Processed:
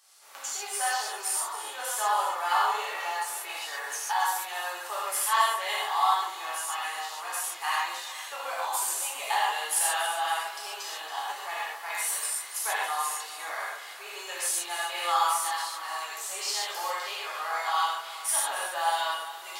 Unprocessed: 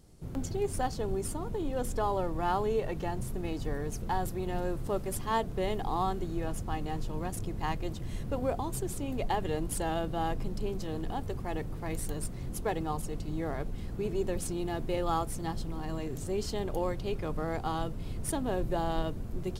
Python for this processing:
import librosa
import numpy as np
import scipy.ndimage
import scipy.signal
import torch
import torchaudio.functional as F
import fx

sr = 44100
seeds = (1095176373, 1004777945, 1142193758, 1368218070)

p1 = scipy.signal.sosfilt(scipy.signal.butter(4, 980.0, 'highpass', fs=sr, output='sos'), x)
p2 = p1 + fx.echo_alternate(p1, sr, ms=139, hz=1800.0, feedback_pct=69, wet_db=-9.5, dry=0)
p3 = fx.rev_gated(p2, sr, seeds[0], gate_ms=170, shape='flat', drr_db=-7.5)
y = p3 * 10.0 ** (4.5 / 20.0)